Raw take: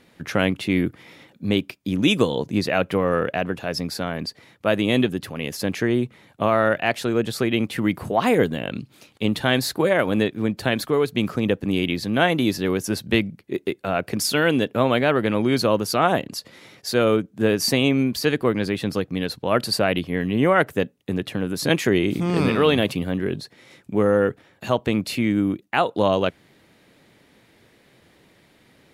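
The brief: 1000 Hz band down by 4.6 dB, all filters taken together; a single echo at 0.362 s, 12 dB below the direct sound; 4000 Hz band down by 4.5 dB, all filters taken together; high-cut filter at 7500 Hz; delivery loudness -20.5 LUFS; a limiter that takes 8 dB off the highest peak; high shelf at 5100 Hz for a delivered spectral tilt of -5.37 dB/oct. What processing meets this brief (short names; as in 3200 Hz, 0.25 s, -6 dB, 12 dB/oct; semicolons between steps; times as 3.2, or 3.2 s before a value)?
LPF 7500 Hz; bell 1000 Hz -6.5 dB; bell 4000 Hz -4 dB; high shelf 5100 Hz -3 dB; limiter -13.5 dBFS; echo 0.362 s -12 dB; gain +5 dB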